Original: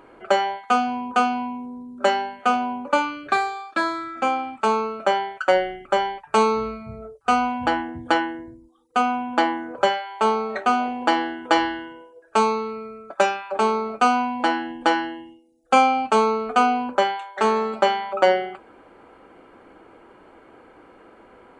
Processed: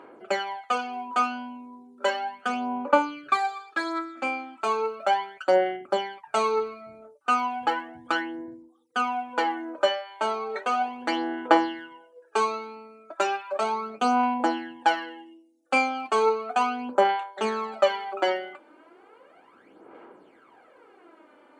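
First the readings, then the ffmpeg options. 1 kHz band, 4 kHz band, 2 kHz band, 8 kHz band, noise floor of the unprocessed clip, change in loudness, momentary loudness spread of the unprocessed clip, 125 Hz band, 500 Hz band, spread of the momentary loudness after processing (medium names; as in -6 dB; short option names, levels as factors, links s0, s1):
-5.0 dB, -4.0 dB, -4.0 dB, -4.5 dB, -51 dBFS, -4.5 dB, 8 LU, under -10 dB, -4.0 dB, 10 LU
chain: -af "aphaser=in_gain=1:out_gain=1:delay=3.4:decay=0.64:speed=0.35:type=sinusoidal,highpass=240,volume=0.473"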